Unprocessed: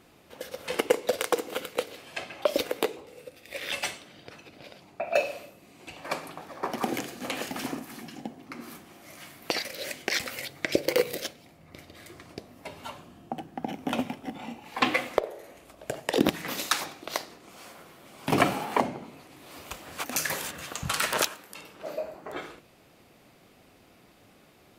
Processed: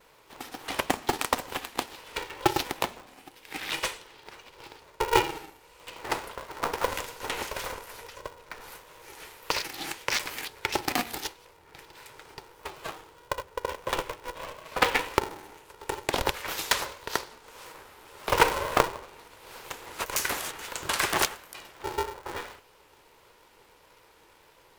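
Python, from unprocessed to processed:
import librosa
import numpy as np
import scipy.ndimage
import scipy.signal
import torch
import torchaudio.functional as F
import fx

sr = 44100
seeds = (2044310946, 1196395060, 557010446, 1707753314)

y = fx.low_shelf_res(x, sr, hz=530.0, db=-7.5, q=3.0)
y = fx.vibrato(y, sr, rate_hz=1.6, depth_cents=66.0)
y = y * np.sign(np.sin(2.0 * np.pi * 240.0 * np.arange(len(y)) / sr))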